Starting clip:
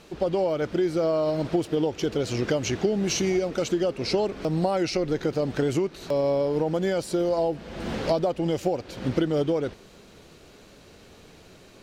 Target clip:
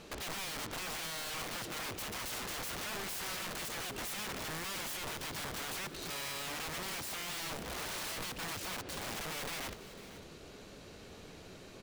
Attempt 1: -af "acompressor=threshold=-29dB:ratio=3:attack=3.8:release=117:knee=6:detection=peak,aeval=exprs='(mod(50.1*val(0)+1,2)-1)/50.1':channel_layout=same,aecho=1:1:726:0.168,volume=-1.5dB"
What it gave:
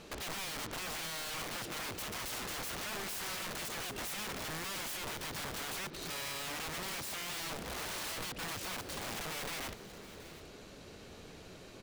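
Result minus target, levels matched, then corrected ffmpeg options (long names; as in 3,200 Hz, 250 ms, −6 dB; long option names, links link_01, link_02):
echo 225 ms late
-af "acompressor=threshold=-29dB:ratio=3:attack=3.8:release=117:knee=6:detection=peak,aeval=exprs='(mod(50.1*val(0)+1,2)-1)/50.1':channel_layout=same,aecho=1:1:501:0.168,volume=-1.5dB"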